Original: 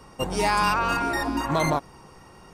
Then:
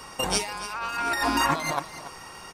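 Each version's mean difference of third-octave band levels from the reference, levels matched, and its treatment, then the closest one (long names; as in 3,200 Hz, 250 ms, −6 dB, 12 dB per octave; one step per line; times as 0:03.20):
8.0 dB: tilt shelving filter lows −7.5 dB, about 710 Hz
compressor whose output falls as the input rises −26 dBFS, ratio −0.5
single-tap delay 286 ms −14 dB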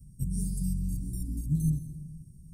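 18.0 dB: Chebyshev band-stop filter 160–8,800 Hz, order 3
low-shelf EQ 480 Hz +6.5 dB
dense smooth reverb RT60 1.5 s, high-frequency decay 0.45×, pre-delay 120 ms, DRR 10 dB
level −2 dB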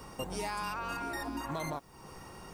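6.0 dB: high-shelf EQ 11,000 Hz +9 dB
downward compressor 3 to 1, threshold −39 dBFS, peak gain reduction 15.5 dB
bit reduction 11 bits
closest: third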